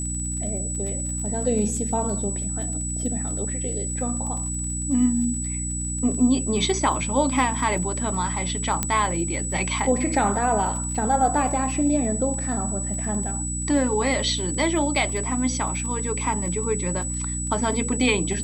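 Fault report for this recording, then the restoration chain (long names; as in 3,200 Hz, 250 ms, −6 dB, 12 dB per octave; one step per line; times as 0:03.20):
surface crackle 28 per second −32 dBFS
mains hum 60 Hz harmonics 5 −30 dBFS
whistle 7,900 Hz −29 dBFS
0:08.83: click −6 dBFS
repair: click removal
hum removal 60 Hz, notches 5
notch filter 7,900 Hz, Q 30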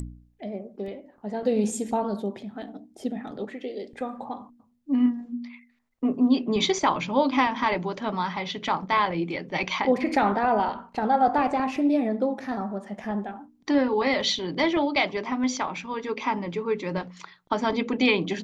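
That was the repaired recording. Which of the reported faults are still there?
none of them is left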